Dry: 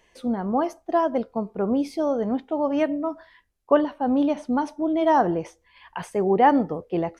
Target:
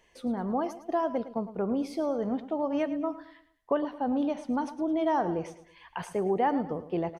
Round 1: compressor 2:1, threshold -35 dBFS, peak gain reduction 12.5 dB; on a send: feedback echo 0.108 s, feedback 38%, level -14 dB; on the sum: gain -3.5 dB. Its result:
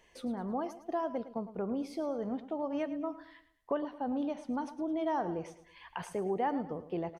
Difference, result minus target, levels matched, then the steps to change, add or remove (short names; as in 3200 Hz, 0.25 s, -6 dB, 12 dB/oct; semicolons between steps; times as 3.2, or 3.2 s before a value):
compressor: peak gain reduction +6 dB
change: compressor 2:1, threshold -23.5 dBFS, peak gain reduction 7 dB